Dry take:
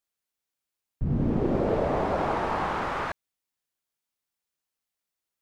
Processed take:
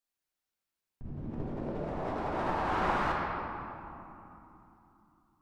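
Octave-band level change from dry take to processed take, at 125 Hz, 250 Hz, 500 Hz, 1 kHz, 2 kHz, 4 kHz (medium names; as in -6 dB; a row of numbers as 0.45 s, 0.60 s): -9.0 dB, -8.5 dB, -8.5 dB, -3.0 dB, -2.0 dB, -4.0 dB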